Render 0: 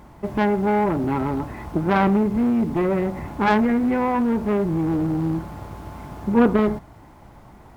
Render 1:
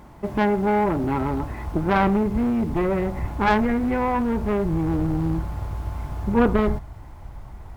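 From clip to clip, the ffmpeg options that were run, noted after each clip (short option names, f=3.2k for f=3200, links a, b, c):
-af "asubboost=boost=5.5:cutoff=91"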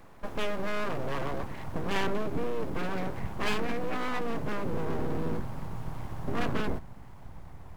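-filter_complex "[0:a]acrossover=split=220|940[a][b][c];[b]alimiter=limit=-22dB:level=0:latency=1[d];[a][d][c]amix=inputs=3:normalize=0,aeval=exprs='abs(val(0))':c=same,volume=-5dB"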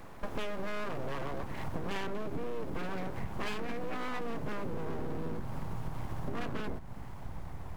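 -af "acompressor=threshold=-35dB:ratio=6,volume=4dB"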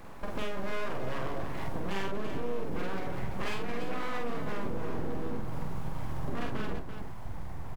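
-af "aecho=1:1:46|337:0.708|0.398"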